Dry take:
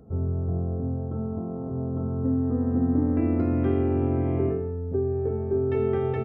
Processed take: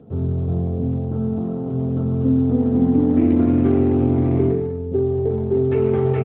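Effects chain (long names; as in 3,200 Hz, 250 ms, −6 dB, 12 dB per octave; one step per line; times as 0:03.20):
0:02.54–0:03.14: double-tracking delay 18 ms −9 dB
slap from a distant wall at 59 metres, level −23 dB
on a send at −11.5 dB: convolution reverb RT60 0.40 s, pre-delay 3 ms
on the sum: level +6.5 dB
AMR narrowband 12.2 kbit/s 8,000 Hz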